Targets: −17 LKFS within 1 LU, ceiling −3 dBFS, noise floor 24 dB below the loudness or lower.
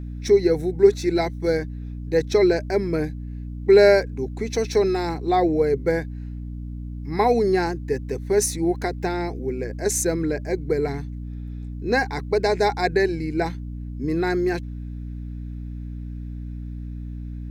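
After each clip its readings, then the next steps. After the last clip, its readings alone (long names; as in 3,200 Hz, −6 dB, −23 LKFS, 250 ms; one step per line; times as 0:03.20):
mains hum 60 Hz; hum harmonics up to 300 Hz; level of the hum −30 dBFS; integrated loudness −22.0 LKFS; sample peak −3.5 dBFS; target loudness −17.0 LKFS
→ hum removal 60 Hz, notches 5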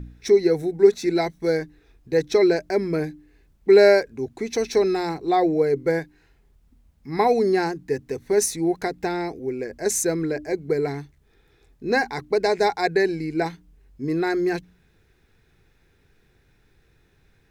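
mains hum none found; integrated loudness −22.0 LKFS; sample peak −4.0 dBFS; target loudness −17.0 LKFS
→ level +5 dB
brickwall limiter −3 dBFS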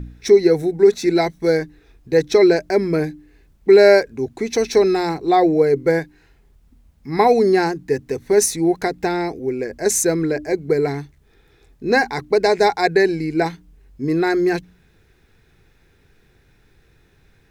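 integrated loudness −17.5 LKFS; sample peak −3.0 dBFS; background noise floor −57 dBFS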